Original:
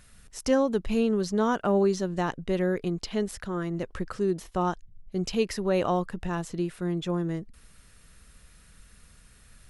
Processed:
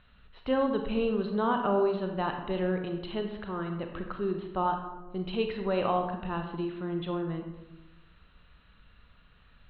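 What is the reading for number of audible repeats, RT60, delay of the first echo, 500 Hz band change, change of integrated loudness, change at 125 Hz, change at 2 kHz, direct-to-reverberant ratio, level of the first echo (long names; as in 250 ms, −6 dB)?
no echo audible, 1.0 s, no echo audible, −3.0 dB, −3.0 dB, −4.5 dB, −2.5 dB, 4.0 dB, no echo audible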